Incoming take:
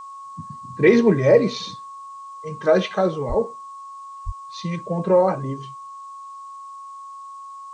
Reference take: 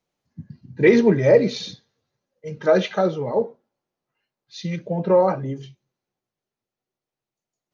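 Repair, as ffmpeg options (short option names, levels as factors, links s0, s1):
-filter_complex "[0:a]bandreject=f=1100:w=30,asplit=3[s0][s1][s2];[s0]afade=t=out:st=3.28:d=0.02[s3];[s1]highpass=f=140:w=0.5412,highpass=f=140:w=1.3066,afade=t=in:st=3.28:d=0.02,afade=t=out:st=3.4:d=0.02[s4];[s2]afade=t=in:st=3.4:d=0.02[s5];[s3][s4][s5]amix=inputs=3:normalize=0,asplit=3[s6][s7][s8];[s6]afade=t=out:st=4.25:d=0.02[s9];[s7]highpass=f=140:w=0.5412,highpass=f=140:w=1.3066,afade=t=in:st=4.25:d=0.02,afade=t=out:st=4.37:d=0.02[s10];[s8]afade=t=in:st=4.37:d=0.02[s11];[s9][s10][s11]amix=inputs=3:normalize=0,agate=range=0.0891:threshold=0.0316"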